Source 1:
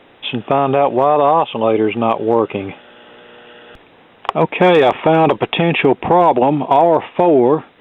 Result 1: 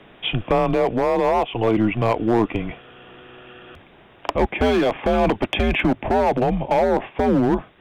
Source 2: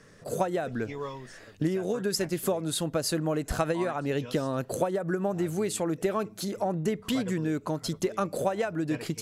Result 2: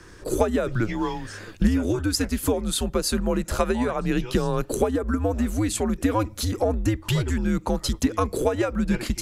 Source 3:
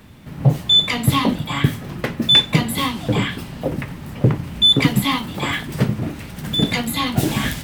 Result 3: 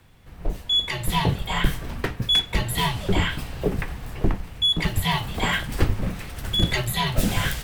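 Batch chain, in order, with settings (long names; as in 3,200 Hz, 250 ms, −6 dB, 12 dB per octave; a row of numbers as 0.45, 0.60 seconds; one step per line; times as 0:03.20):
hard clipping −7.5 dBFS
speech leveller within 4 dB 0.5 s
frequency shifter −110 Hz
normalise the peak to −6 dBFS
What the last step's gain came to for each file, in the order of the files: −4.5, +5.5, −4.0 decibels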